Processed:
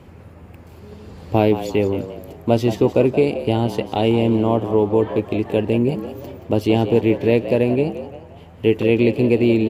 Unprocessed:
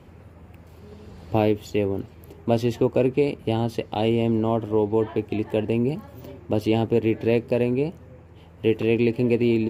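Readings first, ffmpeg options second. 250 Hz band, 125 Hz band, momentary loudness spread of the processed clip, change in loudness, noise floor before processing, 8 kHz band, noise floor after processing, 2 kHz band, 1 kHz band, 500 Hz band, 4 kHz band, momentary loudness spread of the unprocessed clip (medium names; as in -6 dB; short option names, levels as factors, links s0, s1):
+4.5 dB, +4.5 dB, 8 LU, +5.0 dB, -48 dBFS, no reading, -42 dBFS, +5.0 dB, +5.0 dB, +5.0 dB, +5.0 dB, 7 LU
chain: -filter_complex "[0:a]asplit=5[s0][s1][s2][s3][s4];[s1]adelay=175,afreqshift=83,volume=0.251[s5];[s2]adelay=350,afreqshift=166,volume=0.0955[s6];[s3]adelay=525,afreqshift=249,volume=0.0363[s7];[s4]adelay=700,afreqshift=332,volume=0.0138[s8];[s0][s5][s6][s7][s8]amix=inputs=5:normalize=0,volume=1.68"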